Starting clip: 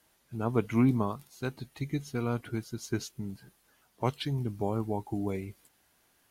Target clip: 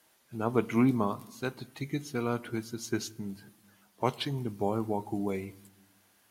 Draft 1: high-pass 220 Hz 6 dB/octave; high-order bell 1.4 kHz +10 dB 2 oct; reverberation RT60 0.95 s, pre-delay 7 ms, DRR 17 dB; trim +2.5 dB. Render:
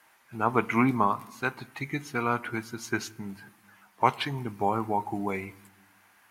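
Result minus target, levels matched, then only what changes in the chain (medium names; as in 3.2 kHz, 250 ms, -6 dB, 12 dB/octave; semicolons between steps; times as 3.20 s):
1 kHz band +6.0 dB
remove: high-order bell 1.4 kHz +10 dB 2 oct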